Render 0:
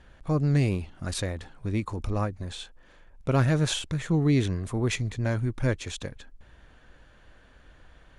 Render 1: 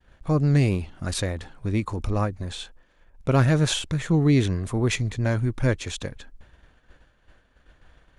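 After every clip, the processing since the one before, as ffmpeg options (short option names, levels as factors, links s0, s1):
-af "agate=range=0.0224:threshold=0.00501:ratio=3:detection=peak,volume=1.5"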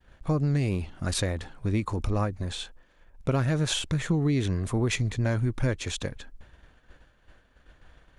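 -af "acompressor=threshold=0.0891:ratio=10"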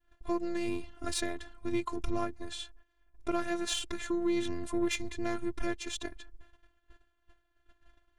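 -af "aeval=exprs='0.211*(cos(1*acos(clip(val(0)/0.211,-1,1)))-cos(1*PI/2))+0.0075*(cos(7*acos(clip(val(0)/0.211,-1,1)))-cos(7*PI/2))':c=same,agate=range=0.398:threshold=0.00224:ratio=16:detection=peak,afftfilt=real='hypot(re,im)*cos(PI*b)':imag='0':win_size=512:overlap=0.75"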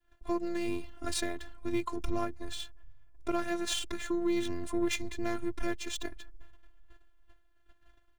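-filter_complex "[0:a]acrossover=split=100|1900[s0][s1][s2];[s0]aecho=1:1:397|794|1191|1588:0.224|0.101|0.0453|0.0204[s3];[s2]acrusher=bits=3:mode=log:mix=0:aa=0.000001[s4];[s3][s1][s4]amix=inputs=3:normalize=0"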